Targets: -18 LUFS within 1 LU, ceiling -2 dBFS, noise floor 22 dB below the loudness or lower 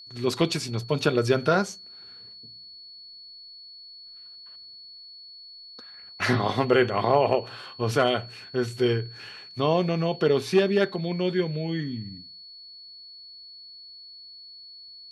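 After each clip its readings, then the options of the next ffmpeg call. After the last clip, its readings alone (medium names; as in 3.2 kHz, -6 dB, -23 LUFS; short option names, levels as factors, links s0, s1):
steady tone 4.4 kHz; tone level -43 dBFS; loudness -25.0 LUFS; peak level -7.5 dBFS; loudness target -18.0 LUFS
-> -af "bandreject=f=4400:w=30"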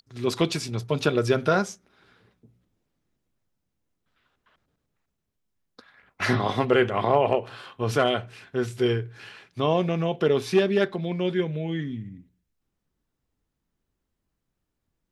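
steady tone not found; loudness -25.0 LUFS; peak level -7.5 dBFS; loudness target -18.0 LUFS
-> -af "volume=2.24,alimiter=limit=0.794:level=0:latency=1"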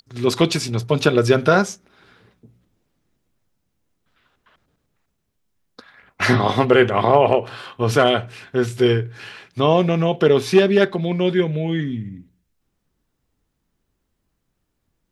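loudness -18.0 LUFS; peak level -2.0 dBFS; noise floor -73 dBFS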